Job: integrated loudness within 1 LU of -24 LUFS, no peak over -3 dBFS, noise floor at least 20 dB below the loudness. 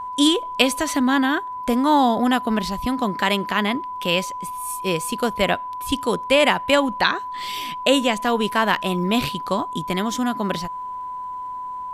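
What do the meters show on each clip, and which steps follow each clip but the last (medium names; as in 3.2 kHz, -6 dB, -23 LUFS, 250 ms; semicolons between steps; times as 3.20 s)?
tick rate 26 per s; steady tone 1 kHz; tone level -28 dBFS; loudness -21.5 LUFS; peak level -1.5 dBFS; loudness target -24.0 LUFS
-> de-click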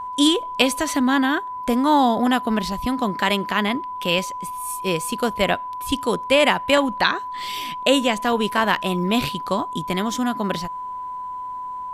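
tick rate 0.42 per s; steady tone 1 kHz; tone level -28 dBFS
-> band-stop 1 kHz, Q 30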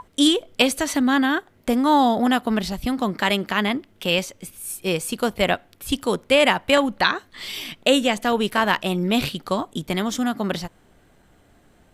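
steady tone not found; loudness -21.5 LUFS; peak level -1.5 dBFS; loudness target -24.0 LUFS
-> trim -2.5 dB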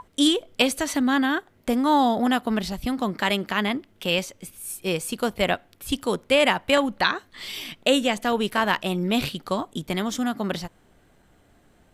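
loudness -24.0 LUFS; peak level -4.0 dBFS; noise floor -59 dBFS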